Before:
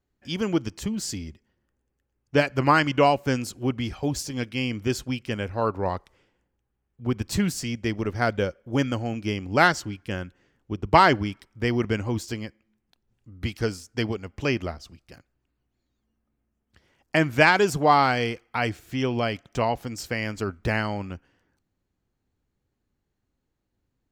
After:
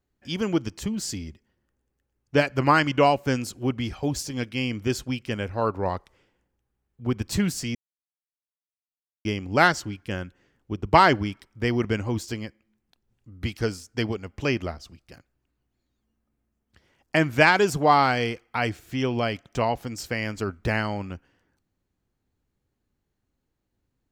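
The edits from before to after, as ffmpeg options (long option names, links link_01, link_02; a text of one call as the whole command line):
ffmpeg -i in.wav -filter_complex "[0:a]asplit=3[link_01][link_02][link_03];[link_01]atrim=end=7.75,asetpts=PTS-STARTPTS,afade=type=out:start_time=7.746:duration=0.004:curve=hsin[link_04];[link_02]atrim=start=7.75:end=9.25,asetpts=PTS-STARTPTS,volume=0[link_05];[link_03]atrim=start=9.25,asetpts=PTS-STARTPTS,afade=type=in:duration=0.004:curve=hsin[link_06];[link_04][link_05][link_06]concat=n=3:v=0:a=1" out.wav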